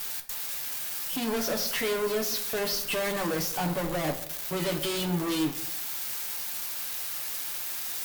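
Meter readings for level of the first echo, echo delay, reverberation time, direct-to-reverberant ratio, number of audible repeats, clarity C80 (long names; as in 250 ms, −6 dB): no echo audible, no echo audible, 0.70 s, 4.0 dB, no echo audible, 15.0 dB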